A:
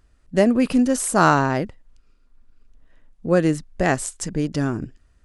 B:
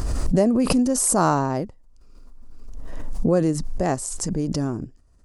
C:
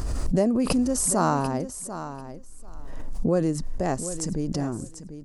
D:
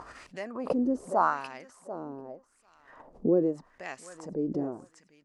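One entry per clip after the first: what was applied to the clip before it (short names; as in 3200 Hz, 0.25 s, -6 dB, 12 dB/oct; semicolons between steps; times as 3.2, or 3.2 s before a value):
band shelf 2300 Hz -9.5 dB; backwards sustainer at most 23 dB/s; gain -2.5 dB
feedback echo 0.742 s, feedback 16%, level -12 dB; gain -3.5 dB
LFO band-pass sine 0.83 Hz 350–2500 Hz; gain +3.5 dB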